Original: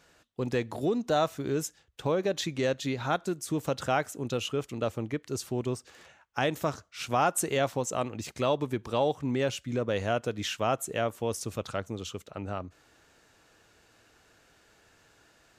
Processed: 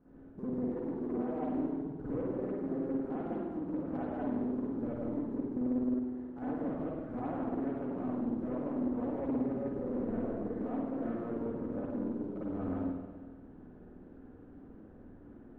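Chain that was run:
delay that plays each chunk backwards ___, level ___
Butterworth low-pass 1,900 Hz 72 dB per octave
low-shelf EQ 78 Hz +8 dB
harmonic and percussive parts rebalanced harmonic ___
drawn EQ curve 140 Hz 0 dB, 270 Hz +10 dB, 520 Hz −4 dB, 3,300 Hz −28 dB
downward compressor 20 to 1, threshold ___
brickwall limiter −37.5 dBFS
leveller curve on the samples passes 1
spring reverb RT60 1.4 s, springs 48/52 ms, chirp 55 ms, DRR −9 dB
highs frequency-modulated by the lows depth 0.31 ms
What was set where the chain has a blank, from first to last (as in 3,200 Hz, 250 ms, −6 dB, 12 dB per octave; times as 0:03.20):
107 ms, −3 dB, −16 dB, −41 dBFS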